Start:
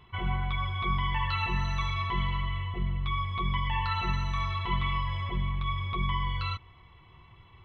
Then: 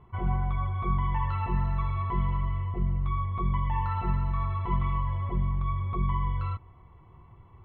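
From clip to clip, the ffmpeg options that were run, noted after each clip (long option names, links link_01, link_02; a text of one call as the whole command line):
ffmpeg -i in.wav -af "lowpass=1000,volume=3dB" out.wav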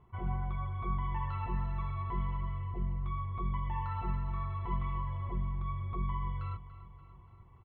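ffmpeg -i in.wav -af "aecho=1:1:288|576|864|1152|1440|1728:0.168|0.099|0.0584|0.0345|0.0203|0.012,volume=-7dB" out.wav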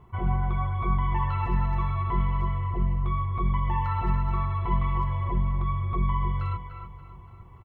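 ffmpeg -i in.wav -filter_complex "[0:a]asplit=2[link_01][link_02];[link_02]adelay=300,highpass=300,lowpass=3400,asoftclip=type=hard:threshold=-32.5dB,volume=-8dB[link_03];[link_01][link_03]amix=inputs=2:normalize=0,volume=9dB" out.wav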